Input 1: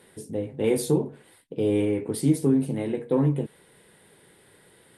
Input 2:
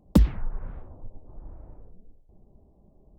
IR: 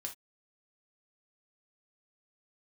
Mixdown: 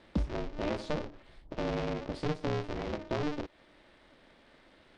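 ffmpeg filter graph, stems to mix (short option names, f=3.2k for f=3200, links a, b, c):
-filter_complex "[0:a]acompressor=threshold=-33dB:ratio=2,aeval=exprs='val(0)*sgn(sin(2*PI*150*n/s))':c=same,volume=-3dB[a];[1:a]volume=-13.5dB[b];[a][b]amix=inputs=2:normalize=0,lowpass=f=5.2k:w=0.5412,lowpass=f=5.2k:w=1.3066"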